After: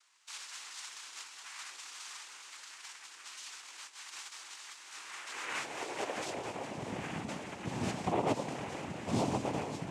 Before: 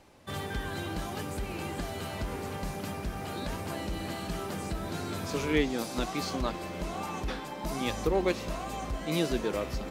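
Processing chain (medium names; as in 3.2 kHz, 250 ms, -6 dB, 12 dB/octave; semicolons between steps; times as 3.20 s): 3.56–4.31 s: compressor with a negative ratio -37 dBFS, ratio -0.5; 6.25–6.66 s: overload inside the chain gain 32 dB; echo whose repeats swap between lows and highs 104 ms, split 960 Hz, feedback 69%, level -8 dB; high-pass sweep 2.8 kHz -> 140 Hz, 4.78–7.28 s; noise-vocoded speech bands 4; trim -6 dB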